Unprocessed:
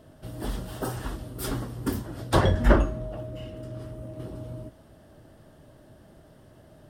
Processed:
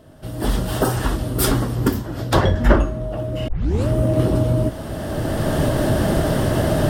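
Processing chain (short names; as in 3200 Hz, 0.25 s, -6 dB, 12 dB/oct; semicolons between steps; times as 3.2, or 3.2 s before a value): recorder AGC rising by 14 dB/s; 1.75–2.75 bell 9400 Hz -10 dB 0.24 oct; 3.48 tape start 0.40 s; gain +4.5 dB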